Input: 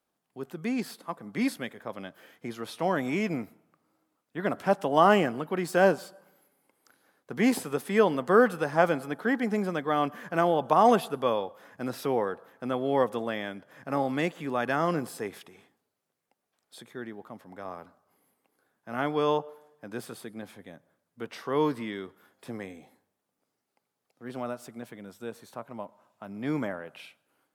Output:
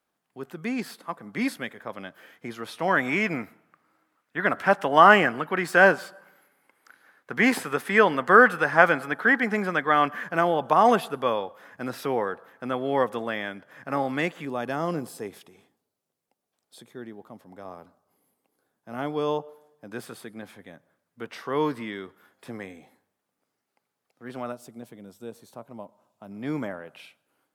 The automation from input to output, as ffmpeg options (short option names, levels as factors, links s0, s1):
-af "asetnsamples=n=441:p=0,asendcmd='2.88 equalizer g 12.5;10.24 equalizer g 5.5;14.45 equalizer g -5;19.92 equalizer g 3.5;24.52 equalizer g -8;26.31 equalizer g -0.5',equalizer=f=1700:t=o:w=1.6:g=5"